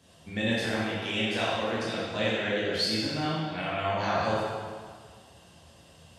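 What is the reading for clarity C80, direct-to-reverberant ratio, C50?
-0.5 dB, -8.0 dB, -3.0 dB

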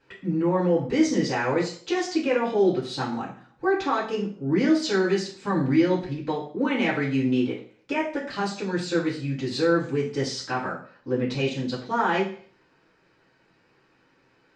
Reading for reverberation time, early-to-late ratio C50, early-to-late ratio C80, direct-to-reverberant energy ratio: 0.50 s, 7.5 dB, 11.5 dB, -8.5 dB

